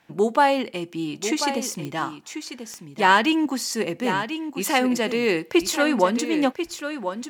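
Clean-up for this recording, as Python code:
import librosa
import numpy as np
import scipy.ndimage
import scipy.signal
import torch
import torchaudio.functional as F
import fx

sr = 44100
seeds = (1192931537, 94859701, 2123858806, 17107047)

y = fx.fix_declick_ar(x, sr, threshold=10.0)
y = fx.fix_echo_inverse(y, sr, delay_ms=1041, level_db=-9.0)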